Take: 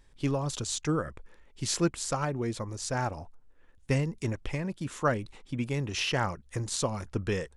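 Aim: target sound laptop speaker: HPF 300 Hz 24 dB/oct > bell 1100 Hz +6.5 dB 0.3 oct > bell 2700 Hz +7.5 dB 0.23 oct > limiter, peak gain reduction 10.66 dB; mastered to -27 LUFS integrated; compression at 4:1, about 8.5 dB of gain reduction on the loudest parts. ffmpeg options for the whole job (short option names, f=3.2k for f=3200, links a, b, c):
-af "acompressor=threshold=-31dB:ratio=4,highpass=f=300:w=0.5412,highpass=f=300:w=1.3066,equalizer=f=1.1k:t=o:w=0.3:g=6.5,equalizer=f=2.7k:t=o:w=0.23:g=7.5,volume=13dB,alimiter=limit=-15.5dB:level=0:latency=1"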